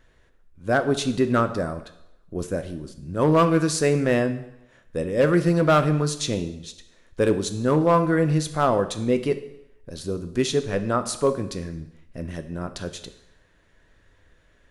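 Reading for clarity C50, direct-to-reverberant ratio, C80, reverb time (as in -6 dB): 12.5 dB, 9.0 dB, 15.0 dB, 0.80 s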